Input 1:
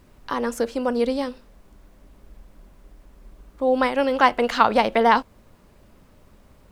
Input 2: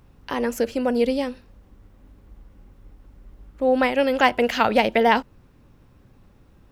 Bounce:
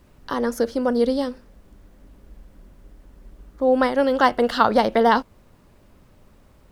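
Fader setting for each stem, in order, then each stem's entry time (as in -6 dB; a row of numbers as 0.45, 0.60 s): -1.5, -6.0 dB; 0.00, 0.00 s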